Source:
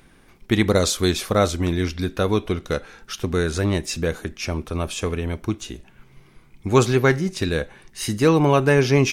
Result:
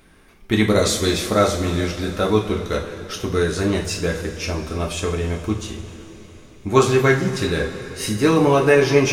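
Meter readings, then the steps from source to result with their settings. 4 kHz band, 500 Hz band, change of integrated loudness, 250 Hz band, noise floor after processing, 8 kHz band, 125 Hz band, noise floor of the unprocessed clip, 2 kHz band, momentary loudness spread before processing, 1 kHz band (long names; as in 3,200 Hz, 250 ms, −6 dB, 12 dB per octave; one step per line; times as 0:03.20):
+2.0 dB, +2.5 dB, +1.5 dB, +1.0 dB, −46 dBFS, +1.5 dB, −0.5 dB, −53 dBFS, +2.5 dB, 12 LU, +2.5 dB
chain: coupled-rooms reverb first 0.35 s, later 4.2 s, from −17 dB, DRR −1.5 dB
level −1.5 dB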